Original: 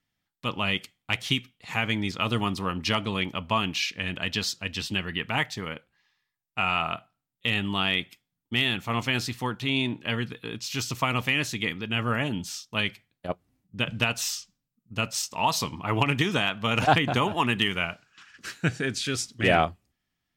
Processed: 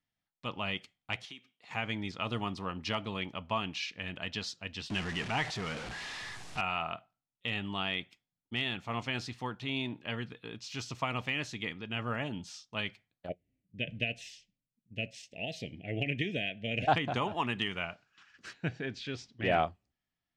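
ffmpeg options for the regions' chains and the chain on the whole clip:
-filter_complex "[0:a]asettb=1/sr,asplit=3[a][b][c];[a]atrim=end=1.254[d];[b]atrim=start=1.25:end=1.71,asetpts=PTS-STARTPTS,afade=t=in:d=0.004:c=qsin,afade=t=out:st=0.456:d=0.004:c=qsin,highpass=260,acompressor=threshold=-44dB:ratio=2:attack=3.2:release=140:knee=1:detection=peak[e];[c]atrim=start=1.706[f];[d][e]acrossfade=d=0.004:c1=hsin:c2=qsin[g];[g][f]acrossfade=d=0.004:c1=qsin:c2=hsin,asettb=1/sr,asplit=3[h][i][j];[h]atrim=end=4.904[k];[i]atrim=start=4.9:end=6.61,asetpts=PTS-STARTPTS,afade=t=in:d=0.004:c=qsin,afade=t=out:st=1.706:d=0.004:c=qsin,aeval=exprs='val(0)+0.5*0.0501*sgn(val(0))':c=same,lowpass=f=11k:w=0.5412,lowpass=f=11k:w=1.3066,equalizer=f=560:w=4.9:g=-5.5[l];[j]atrim=start=6.606[m];[k][l]acrossfade=d=0.004:c1=hsin:c2=qsin[n];[n][m]acrossfade=d=0.004:c1=qsin:c2=hsin,asettb=1/sr,asplit=3[o][p][q];[o]atrim=end=13.294[r];[p]atrim=start=13.29:end=16.88,asetpts=PTS-STARTPTS,afade=t=in:d=0.004:c=qsin,afade=t=out:st=3.586:d=0.004:c=qsin,asuperstop=centerf=1100:order=8:qfactor=0.92,highshelf=f=3.6k:t=q:w=1.5:g=-8.5[s];[q]atrim=start=16.876[t];[r][s]acrossfade=d=0.004:c1=hsin:c2=qsin[u];[u][t]acrossfade=d=0.004:c1=qsin:c2=hsin,asettb=1/sr,asplit=3[v][w][x];[v]atrim=end=18.534[y];[w]atrim=start=18.53:end=19.52,asetpts=PTS-STARTPTS,afade=t=in:d=0.004:c=qsin,afade=t=out:st=0.986:d=0.004:c=qsin,lowpass=4k,equalizer=f=1.3k:w=4.1:g=-7[z];[x]atrim=start=19.516[aa];[y][z]acrossfade=d=0.004:c1=hsin:c2=qsin[ab];[ab][aa]acrossfade=d=0.004:c1=qsin:c2=hsin,lowpass=6.3k,equalizer=f=700:t=o:w=0.8:g=4,volume=-9dB"

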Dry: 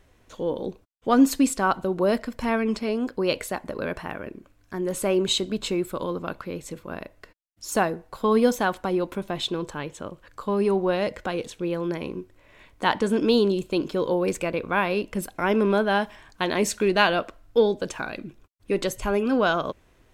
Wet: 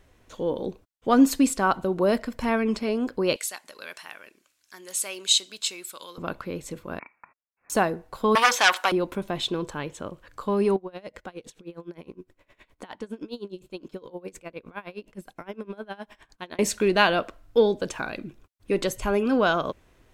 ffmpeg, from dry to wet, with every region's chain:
-filter_complex "[0:a]asettb=1/sr,asplit=3[a][b][c];[a]atrim=end=3.364[d];[b]atrim=start=3.36:end=6.18,asetpts=PTS-STARTPTS,afade=t=in:d=0.004:c=qsin,afade=t=out:st=2.816:d=0.004:c=qsin,bandpass=f=5.2k:t=q:w=0.65,highshelf=f=4.7k:g=11.5[e];[c]atrim=start=6.176[f];[d][e]acrossfade=d=0.004:c1=hsin:c2=qsin[g];[g][f]acrossfade=d=0.004:c1=qsin:c2=hsin,asettb=1/sr,asplit=3[h][i][j];[h]atrim=end=6.994[k];[i]atrim=start=6.99:end=7.7,asetpts=PTS-STARTPTS,afade=t=in:d=0.004:c=qsin,afade=t=out:st=0.706:d=0.004:c=qsin,highpass=810,lowpass=f=2.5k:t=q:w=0.5098,lowpass=f=2.5k:t=q:w=0.6013,lowpass=f=2.5k:t=q:w=0.9,lowpass=f=2.5k:t=q:w=2.563,afreqshift=-2900[l];[j]atrim=start=7.696[m];[k][l]acrossfade=d=0.004:c1=hsin:c2=qsin[n];[n][m]acrossfade=d=0.004:c1=qsin:c2=hsin,asettb=1/sr,asplit=3[o][p][q];[o]atrim=end=8.354[r];[p]atrim=start=8.35:end=8.92,asetpts=PTS-STARTPTS,afade=t=in:d=0.004:c=qsin,afade=t=out:st=0.566:d=0.004:c=qsin,acrossover=split=6000[s][t];[t]acompressor=threshold=-52dB:ratio=4:attack=1:release=60[u];[s][u]amix=inputs=2:normalize=0,aeval=exprs='0.398*sin(PI/2*3.55*val(0)/0.398)':c=same,highpass=1.1k[v];[q]atrim=start=8.916[w];[r][v]acrossfade=d=0.004:c1=hsin:c2=qsin[x];[x][w]acrossfade=d=0.004:c1=qsin:c2=hsin,asettb=1/sr,asplit=3[y][z][aa];[y]atrim=end=10.764[ab];[z]atrim=start=10.76:end=16.59,asetpts=PTS-STARTPTS,afade=t=in:d=0.004:c=qsin,afade=t=out:st=5.826:d=0.004:c=qsin,acompressor=threshold=-37dB:ratio=2:attack=3.2:release=140:knee=1:detection=peak,bandreject=f=50:t=h:w=6,bandreject=f=100:t=h:w=6,bandreject=f=150:t=h:w=6,aeval=exprs='val(0)*pow(10,-22*(0.5-0.5*cos(2*PI*9.7*n/s))/20)':c=same[ac];[aa]atrim=start=16.586[ad];[ab][ac]acrossfade=d=0.004:c1=hsin:c2=qsin[ae];[ae][ad]acrossfade=d=0.004:c1=qsin:c2=hsin"

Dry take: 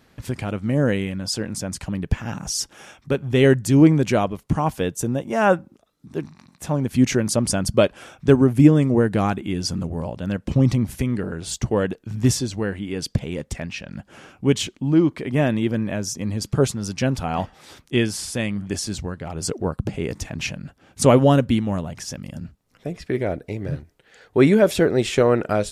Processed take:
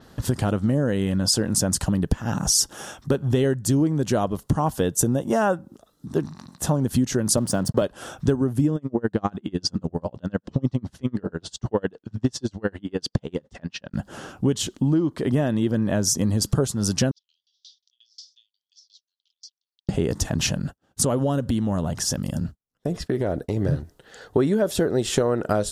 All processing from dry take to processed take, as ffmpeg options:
-filter_complex "[0:a]asettb=1/sr,asplit=3[a][b][c];[a]atrim=end=7.374[d];[b]atrim=start=7.37:end=7.82,asetpts=PTS-STARTPTS,afade=t=in:d=0.004:c=qsin,afade=t=out:st=0.446:d=0.004:c=qsin,highpass=f=100:w=0.5412,highpass=f=100:w=1.3066,highshelf=f=3.9k:g=-10.5,aeval=exprs='sgn(val(0))*max(abs(val(0))-0.00794,0)':c=same[e];[c]atrim=start=7.816[f];[d][e]acrossfade=d=0.004:c1=hsin:c2=qsin[g];[g][f]acrossfade=d=0.004:c1=qsin:c2=hsin,asettb=1/sr,asplit=3[h][i][j];[h]atrim=end=8.764[k];[i]atrim=start=8.76:end=13.94,asetpts=PTS-STARTPTS,afade=t=in:d=0.004:c=qsin,afade=t=out:st=5.176:d=0.004:c=qsin,lowpass=4.8k,lowshelf=f=120:g=-9,aeval=exprs='val(0)*pow(10,-35*(0.5-0.5*cos(2*PI*10*n/s))/20)':c=same[l];[j]atrim=start=13.936[m];[k][l]acrossfade=d=0.004:c1=hsin:c2=qsin[n];[n][m]acrossfade=d=0.004:c1=qsin:c2=hsin,asettb=1/sr,asplit=3[o][p][q];[o]atrim=end=17.114[r];[p]atrim=start=17.11:end=19.89,asetpts=PTS-STARTPTS,afade=t=in:d=0.004:c=qsin,afade=t=out:st=2.776:d=0.004:c=qsin,acompressor=threshold=-36dB:ratio=10:attack=3.2:release=140:knee=1:detection=peak,asuperpass=centerf=4400:order=8:qfactor=1.6,aeval=exprs='val(0)*pow(10,-33*if(lt(mod(5.6*n/s,1),2*abs(5.6)/1000),1-mod(5.6*n/s,1)/(2*abs(5.6)/1000),(mod(5.6*n/s,1)-2*abs(5.6)/1000)/(1-2*abs(5.6)/1000))/20)':c=same[s];[q]atrim=start=19.886[t];[r][s]acrossfade=d=0.004:c1=hsin:c2=qsin[u];[u][t]acrossfade=d=0.004:c1=qsin:c2=hsin,asettb=1/sr,asplit=3[v][w][x];[v]atrim=end=20.594[y];[w]atrim=start=20.59:end=23.57,asetpts=PTS-STARTPTS,afade=t=in:d=0.004:c=qsin,afade=t=out:st=2.976:d=0.004:c=qsin,agate=range=-33dB:threshold=-41dB:ratio=3:release=100:detection=peak,acompressor=threshold=-28dB:ratio=3:attack=3.2:release=140:knee=1:detection=peak[z];[x]atrim=start=23.566[aa];[y][z]acrossfade=d=0.004:c1=hsin:c2=qsin[ab];[ab][aa]acrossfade=d=0.004:c1=qsin:c2=hsin,equalizer=f=2.3k:w=3.4:g=-14,acompressor=threshold=-25dB:ratio=10,adynamicequalizer=threshold=0.00562:dfrequency=6900:dqfactor=0.7:tfrequency=6900:tqfactor=0.7:attack=5:release=100:ratio=0.375:range=2.5:mode=boostabove:tftype=highshelf,volume=7.5dB"

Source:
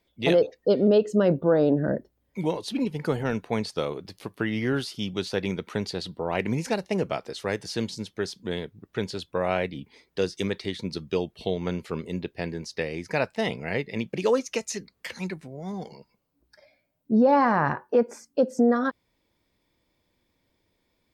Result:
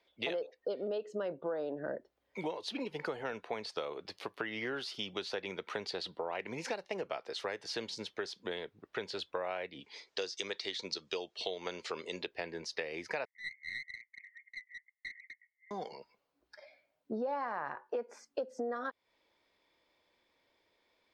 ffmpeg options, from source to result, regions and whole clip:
-filter_complex "[0:a]asettb=1/sr,asplit=3[a][b][c];[a]atrim=end=9.804[d];[b]atrim=start=9.8:end=12.27,asetpts=PTS-STARTPTS,afade=t=in:d=0.004:c=qsin,afade=t=out:st=2.466:d=0.004:c=qsin,lowpass=f=7.2k:w=0.5412,lowpass=f=7.2k:w=1.3066,bass=f=250:g=-6,treble=f=4k:g=14[e];[c]atrim=start=12.266[f];[d][e]acrossfade=d=0.004:c1=hsin:c2=qsin[g];[g][f]acrossfade=d=0.004:c1=qsin:c2=hsin,asettb=1/sr,asplit=3[h][i][j];[h]atrim=end=13.254[k];[i]atrim=start=13.25:end=15.71,asetpts=PTS-STARTPTS,afade=t=in:d=0.004:c=qsin,afade=t=out:st=2.456:d=0.004:c=qsin,asuperpass=centerf=2000:order=8:qfactor=6.8,aeval=exprs='clip(val(0),-1,0.00335)':c=same[l];[j]atrim=start=15.706[m];[k][l]acrossfade=d=0.004:c1=hsin:c2=qsin[n];[n][m]acrossfade=d=0.004:c1=qsin:c2=hsin,acrossover=split=390 5500:gain=0.126 1 0.178[o][p][q];[o][p][q]amix=inputs=3:normalize=0,acompressor=threshold=-37dB:ratio=6,volume=2dB"

